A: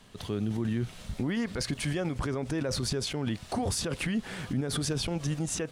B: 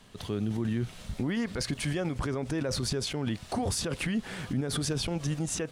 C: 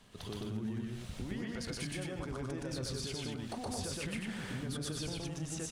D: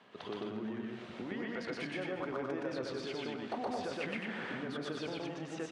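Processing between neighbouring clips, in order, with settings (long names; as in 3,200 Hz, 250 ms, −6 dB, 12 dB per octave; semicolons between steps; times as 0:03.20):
no processing that can be heard
downward compressor, threshold −34 dBFS, peak gain reduction 9 dB; on a send: loudspeakers that aren't time-aligned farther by 41 metres 0 dB, 52 metres −10 dB, 74 metres −4 dB; on the sum: level −5.5 dB
band-pass filter 320–2,400 Hz; on a send at −12.5 dB: convolution reverb RT60 0.80 s, pre-delay 191 ms; on the sum: level +5.5 dB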